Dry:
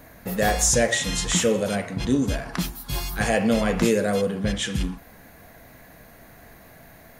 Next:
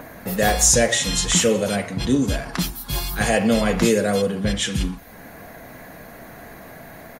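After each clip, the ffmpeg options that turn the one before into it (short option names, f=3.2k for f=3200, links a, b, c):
-filter_complex "[0:a]acrossover=split=140|2200[a][b][c];[b]acompressor=mode=upward:threshold=-35dB:ratio=2.5[d];[c]aecho=1:1:5.5:0.88[e];[a][d][e]amix=inputs=3:normalize=0,volume=2.5dB"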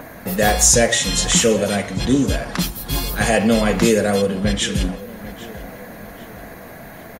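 -filter_complex "[0:a]asplit=2[a][b];[b]adelay=793,lowpass=f=3.7k:p=1,volume=-17dB,asplit=2[c][d];[d]adelay=793,lowpass=f=3.7k:p=1,volume=0.52,asplit=2[e][f];[f]adelay=793,lowpass=f=3.7k:p=1,volume=0.52,asplit=2[g][h];[h]adelay=793,lowpass=f=3.7k:p=1,volume=0.52,asplit=2[i][j];[j]adelay=793,lowpass=f=3.7k:p=1,volume=0.52[k];[a][c][e][g][i][k]amix=inputs=6:normalize=0,volume=2.5dB"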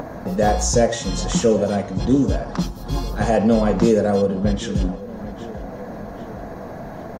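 -af "firequalizer=gain_entry='entry(880,0);entry(2100,-14);entry(5600,-7);entry(10000,-22)':delay=0.05:min_phase=1,acompressor=mode=upward:threshold=-25dB:ratio=2.5"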